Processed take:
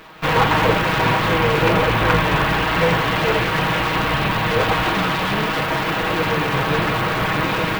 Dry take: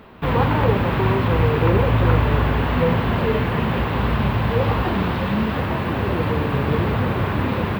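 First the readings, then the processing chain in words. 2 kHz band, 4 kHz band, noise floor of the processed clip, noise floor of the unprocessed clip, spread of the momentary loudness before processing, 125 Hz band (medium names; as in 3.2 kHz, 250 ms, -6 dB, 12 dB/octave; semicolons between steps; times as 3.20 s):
+8.0 dB, +10.0 dB, -22 dBFS, -24 dBFS, 5 LU, -4.0 dB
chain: comb filter that takes the minimum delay 6.3 ms; tilt shelf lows -5.5 dB, about 680 Hz; trim +4 dB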